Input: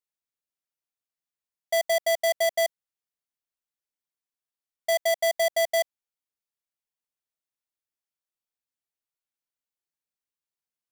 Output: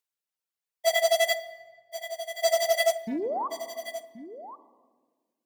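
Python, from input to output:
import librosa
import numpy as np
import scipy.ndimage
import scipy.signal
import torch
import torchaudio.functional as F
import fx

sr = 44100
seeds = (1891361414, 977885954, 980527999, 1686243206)

y = fx.highpass(x, sr, hz=69.0, slope=6)
y = fx.dereverb_blind(y, sr, rt60_s=1.8)
y = fx.low_shelf(y, sr, hz=280.0, db=-8.0)
y = fx.stretch_vocoder_free(y, sr, factor=0.5)
y = fx.spec_paint(y, sr, seeds[0], shape='rise', start_s=3.07, length_s=0.41, low_hz=210.0, high_hz=1200.0, level_db=-37.0)
y = y + 10.0 ** (-13.0 / 20.0) * np.pad(y, (int(1078 * sr / 1000.0), 0))[:len(y)]
y = fx.room_shoebox(y, sr, seeds[1], volume_m3=1400.0, walls='mixed', distance_m=0.44)
y = fx.doppler_dist(y, sr, depth_ms=0.14)
y = y * librosa.db_to_amplitude(7.5)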